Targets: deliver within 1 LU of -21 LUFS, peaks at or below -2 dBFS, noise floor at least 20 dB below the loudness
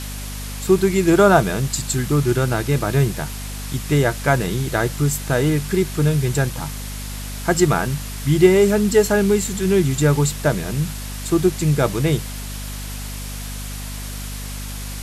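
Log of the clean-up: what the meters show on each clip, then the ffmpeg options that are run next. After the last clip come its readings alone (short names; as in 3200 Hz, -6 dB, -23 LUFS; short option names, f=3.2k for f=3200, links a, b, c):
hum 50 Hz; harmonics up to 250 Hz; hum level -29 dBFS; noise floor -30 dBFS; noise floor target -39 dBFS; loudness -19.0 LUFS; peak -2.0 dBFS; loudness target -21.0 LUFS
-> -af "bandreject=f=50:t=h:w=4,bandreject=f=100:t=h:w=4,bandreject=f=150:t=h:w=4,bandreject=f=200:t=h:w=4,bandreject=f=250:t=h:w=4"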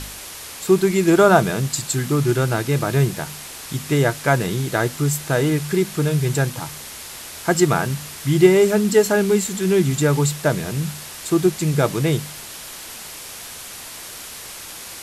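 hum none; noise floor -36 dBFS; noise floor target -39 dBFS
-> -af "afftdn=nr=6:nf=-36"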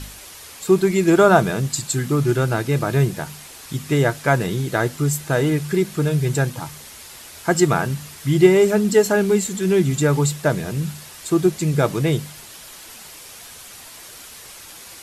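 noise floor -41 dBFS; loudness -19.0 LUFS; peak -1.5 dBFS; loudness target -21.0 LUFS
-> -af "volume=-2dB"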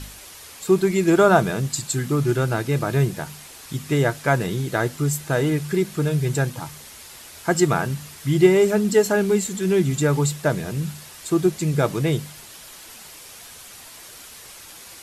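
loudness -21.0 LUFS; peak -3.5 dBFS; noise floor -43 dBFS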